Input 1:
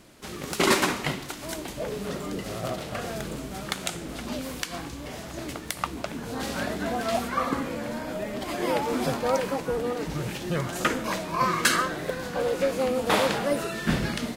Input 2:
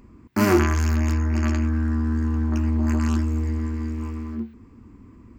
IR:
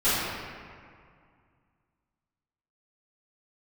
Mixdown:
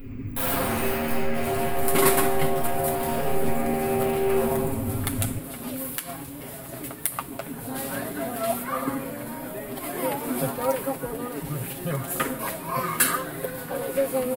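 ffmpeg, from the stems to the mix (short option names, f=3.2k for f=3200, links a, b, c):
-filter_complex "[0:a]adelay=1350,volume=-2.5dB[a];[1:a]acompressor=threshold=-27dB:ratio=8,equalizer=f=100:t=o:w=0.67:g=6,equalizer=f=1k:t=o:w=0.67:g=-12,equalizer=f=2.5k:t=o:w=0.67:g=9,equalizer=f=10k:t=o:w=0.67:g=-10,aeval=exprs='0.0211*(abs(mod(val(0)/0.0211+3,4)-2)-1)':c=same,volume=-1dB,asplit=2[b][c];[c]volume=-3dB[d];[2:a]atrim=start_sample=2205[e];[d][e]afir=irnorm=-1:irlink=0[f];[a][b][f]amix=inputs=3:normalize=0,highshelf=f=3.9k:g=-9,aexciter=amount=14.1:drive=4:freq=8.9k,aecho=1:1:7.4:0.65"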